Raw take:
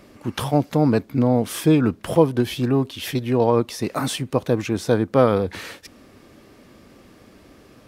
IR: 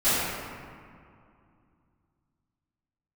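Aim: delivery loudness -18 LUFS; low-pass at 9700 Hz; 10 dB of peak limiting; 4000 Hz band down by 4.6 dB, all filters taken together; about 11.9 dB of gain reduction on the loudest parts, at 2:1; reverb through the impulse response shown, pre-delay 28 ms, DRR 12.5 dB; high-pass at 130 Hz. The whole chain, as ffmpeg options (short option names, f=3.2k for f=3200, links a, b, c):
-filter_complex "[0:a]highpass=130,lowpass=9.7k,equalizer=f=4k:t=o:g=-6,acompressor=threshold=-33dB:ratio=2,alimiter=level_in=0.5dB:limit=-24dB:level=0:latency=1,volume=-0.5dB,asplit=2[a][b];[1:a]atrim=start_sample=2205,adelay=28[c];[b][c]afir=irnorm=-1:irlink=0,volume=-29dB[d];[a][d]amix=inputs=2:normalize=0,volume=17dB"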